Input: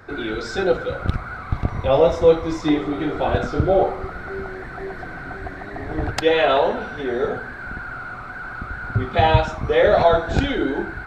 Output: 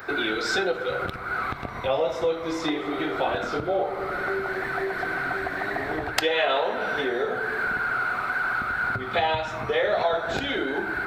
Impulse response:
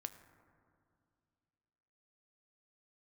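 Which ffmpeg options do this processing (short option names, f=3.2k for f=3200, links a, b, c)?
-filter_complex "[0:a]asplit=2[a][b];[1:a]atrim=start_sample=2205,asetrate=57330,aresample=44100,lowpass=4.1k[c];[b][c]afir=irnorm=-1:irlink=0,volume=12dB[d];[a][d]amix=inputs=2:normalize=0,acompressor=threshold=-19dB:ratio=4,aemphasis=mode=production:type=riaa,volume=-2.5dB"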